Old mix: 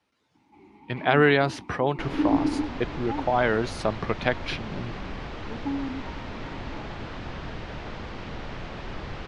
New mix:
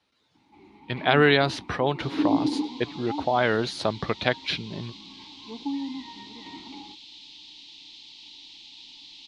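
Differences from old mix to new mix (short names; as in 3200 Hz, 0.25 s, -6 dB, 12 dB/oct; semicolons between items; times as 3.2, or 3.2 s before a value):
second sound: add inverse Chebyshev high-pass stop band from 1600 Hz, stop band 40 dB; master: add bell 3900 Hz +9 dB 0.67 oct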